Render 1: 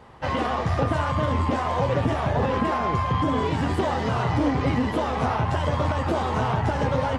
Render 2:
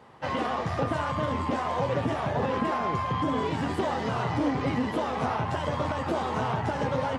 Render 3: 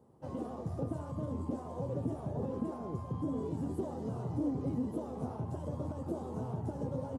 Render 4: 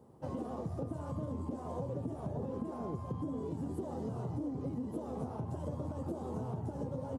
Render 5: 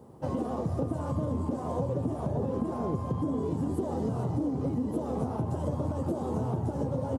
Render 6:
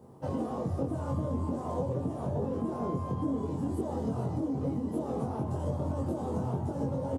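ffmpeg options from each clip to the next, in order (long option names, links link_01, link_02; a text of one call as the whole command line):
ffmpeg -i in.wav -af "highpass=120,volume=-3.5dB" out.wav
ffmpeg -i in.wav -af "firequalizer=gain_entry='entry(340,0);entry(740,-10);entry(1900,-27);entry(7200,-7);entry(10000,0)':delay=0.05:min_phase=1,volume=-6dB" out.wav
ffmpeg -i in.wav -af "acompressor=threshold=-39dB:ratio=6,volume=4dB" out.wav
ffmpeg -i in.wav -af "aecho=1:1:450:0.237,volume=8dB" out.wav
ffmpeg -i in.wav -filter_complex "[0:a]asplit=2[link_01][link_02];[link_02]adelay=22,volume=-2.5dB[link_03];[link_01][link_03]amix=inputs=2:normalize=0,volume=-3.5dB" out.wav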